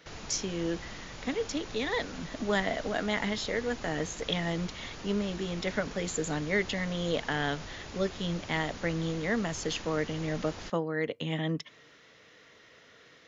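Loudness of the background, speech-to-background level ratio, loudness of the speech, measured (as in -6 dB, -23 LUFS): -44.0 LUFS, 11.5 dB, -32.5 LUFS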